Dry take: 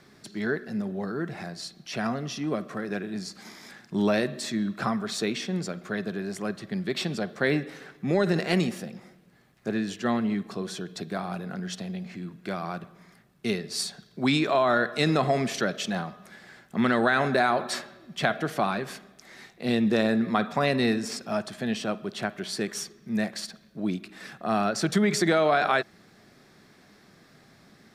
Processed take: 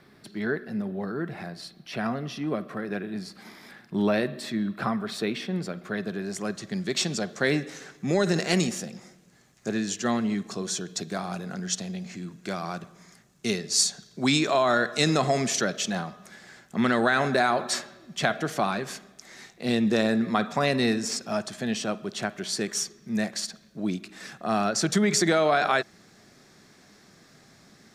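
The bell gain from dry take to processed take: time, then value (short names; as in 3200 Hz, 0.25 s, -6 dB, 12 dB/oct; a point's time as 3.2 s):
bell 6700 Hz 0.84 oct
5.55 s -8.5 dB
6.22 s +3.5 dB
6.64 s +14.5 dB
15.4 s +14.5 dB
15.81 s +8 dB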